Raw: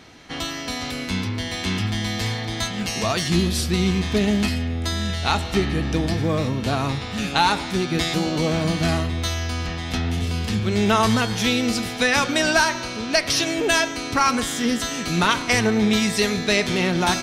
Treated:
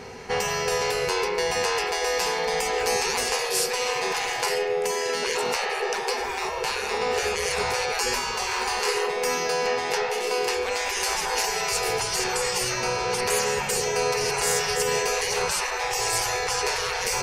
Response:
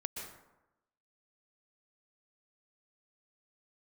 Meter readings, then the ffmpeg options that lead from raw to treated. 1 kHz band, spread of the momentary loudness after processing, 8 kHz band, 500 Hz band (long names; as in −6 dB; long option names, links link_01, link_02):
−1.0 dB, 3 LU, +2.5 dB, +0.5 dB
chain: -af "afftfilt=real='re*lt(hypot(re,im),0.1)':imag='im*lt(hypot(re,im),0.1)':win_size=1024:overlap=0.75,superequalizer=6b=0.355:7b=3.55:9b=2:13b=0.398,volume=5dB"